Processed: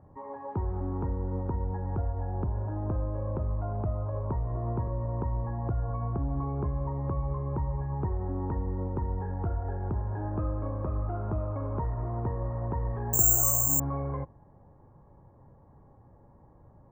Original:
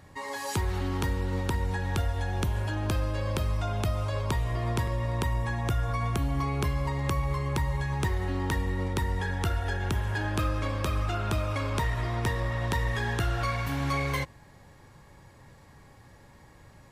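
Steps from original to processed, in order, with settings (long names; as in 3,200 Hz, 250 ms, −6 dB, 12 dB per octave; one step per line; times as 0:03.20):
low-pass filter 1,000 Hz 24 dB per octave
0:13.13–0:13.80: bad sample-rate conversion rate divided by 6×, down filtered, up zero stuff
level −2 dB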